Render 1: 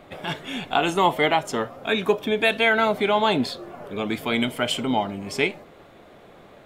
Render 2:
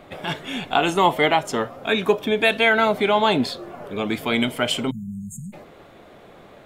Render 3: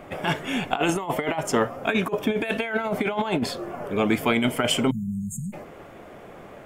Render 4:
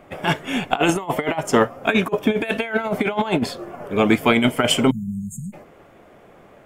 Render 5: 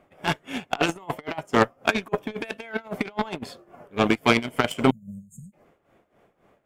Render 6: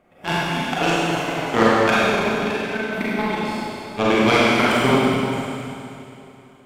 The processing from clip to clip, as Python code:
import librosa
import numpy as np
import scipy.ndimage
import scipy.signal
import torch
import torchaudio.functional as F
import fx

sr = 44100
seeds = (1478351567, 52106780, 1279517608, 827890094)

y1 = fx.spec_erase(x, sr, start_s=4.9, length_s=0.63, low_hz=230.0, high_hz=6400.0)
y1 = y1 * librosa.db_to_amplitude(2.0)
y2 = fx.peak_eq(y1, sr, hz=3900.0, db=-11.5, octaves=0.41)
y2 = fx.over_compress(y2, sr, threshold_db=-22.0, ratio=-0.5)
y3 = fx.upward_expand(y2, sr, threshold_db=-41.0, expansion=1.5)
y3 = y3 * librosa.db_to_amplitude(6.5)
y4 = fx.cheby_harmonics(y3, sr, harmonics=(7,), levels_db=(-20,), full_scale_db=-1.0)
y4 = y4 * (1.0 - 0.79 / 2.0 + 0.79 / 2.0 * np.cos(2.0 * np.pi * 3.7 * (np.arange(len(y4)) / sr)))
y5 = fx.rev_schroeder(y4, sr, rt60_s=2.8, comb_ms=32, drr_db=-8.5)
y5 = y5 * librosa.db_to_amplitude(-2.0)